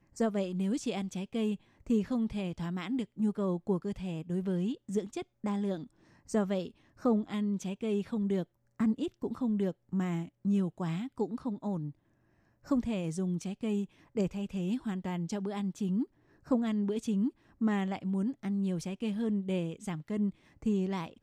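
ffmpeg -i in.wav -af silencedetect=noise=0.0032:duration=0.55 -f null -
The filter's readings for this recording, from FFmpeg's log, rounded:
silence_start: 11.92
silence_end: 12.65 | silence_duration: 0.73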